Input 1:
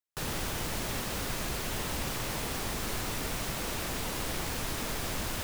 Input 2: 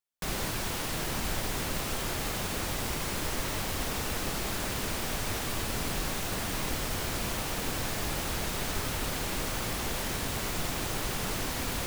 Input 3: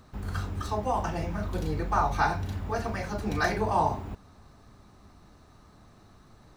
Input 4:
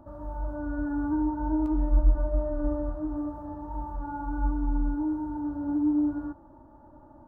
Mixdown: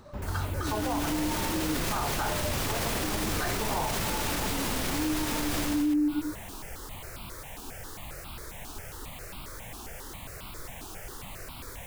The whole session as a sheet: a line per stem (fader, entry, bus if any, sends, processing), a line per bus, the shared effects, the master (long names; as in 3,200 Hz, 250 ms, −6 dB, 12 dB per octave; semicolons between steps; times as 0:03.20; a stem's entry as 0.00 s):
−2.0 dB, 0.50 s, no send, automatic gain control gain up to 12 dB
−7.0 dB, 0.00 s, no send, step-sequenced phaser 7.4 Hz 540–1,800 Hz
+2.0 dB, 0.00 s, no send, mains-hum notches 50/100/150/200 Hz
+1.0 dB, 0.00 s, no send, three sine waves on the formant tracks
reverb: not used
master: brickwall limiter −20.5 dBFS, peak gain reduction 13 dB